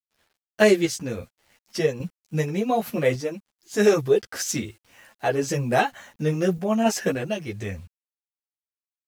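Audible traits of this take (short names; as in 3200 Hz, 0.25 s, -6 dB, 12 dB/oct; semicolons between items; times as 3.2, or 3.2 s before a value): a quantiser's noise floor 10-bit, dither none; random-step tremolo; a shimmering, thickened sound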